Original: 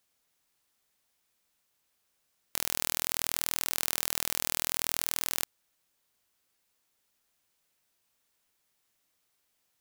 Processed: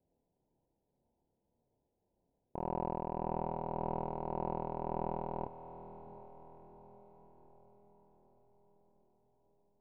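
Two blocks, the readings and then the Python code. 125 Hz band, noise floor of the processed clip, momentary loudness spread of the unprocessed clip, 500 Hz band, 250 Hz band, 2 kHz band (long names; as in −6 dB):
+7.5 dB, −83 dBFS, 4 LU, +8.0 dB, +7.5 dB, −24.5 dB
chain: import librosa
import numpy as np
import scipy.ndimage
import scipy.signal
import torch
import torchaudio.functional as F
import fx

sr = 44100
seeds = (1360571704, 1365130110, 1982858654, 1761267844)

p1 = fx.env_lowpass(x, sr, base_hz=500.0, full_db=-40.0)
p2 = scipy.signal.sosfilt(scipy.signal.cheby1(10, 1.0, 1000.0, 'lowpass', fs=sr, output='sos'), p1)
p3 = 10.0 ** (-39.0 / 20.0) * np.tanh(p2 / 10.0 ** (-39.0 / 20.0))
p4 = p2 + F.gain(torch.from_numpy(p3), -3.0).numpy()
p5 = p4 * (1.0 - 0.31 / 2.0 + 0.31 / 2.0 * np.cos(2.0 * np.pi * 1.8 * (np.arange(len(p4)) / sr)))
p6 = fx.doubler(p5, sr, ms=30.0, db=-4)
p7 = fx.echo_diffused(p6, sr, ms=697, feedback_pct=52, wet_db=-12.0)
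y = F.gain(torch.from_numpy(p7), 6.0).numpy()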